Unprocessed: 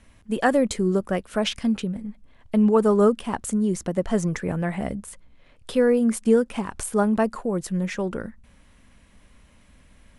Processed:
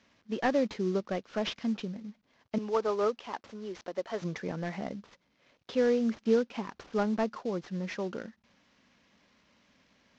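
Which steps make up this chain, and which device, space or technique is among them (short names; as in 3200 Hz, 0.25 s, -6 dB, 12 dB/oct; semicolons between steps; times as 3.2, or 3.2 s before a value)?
2.58–4.22 HPF 440 Hz 12 dB/oct; early wireless headset (HPF 190 Hz 12 dB/oct; CVSD 32 kbps); gain -6.5 dB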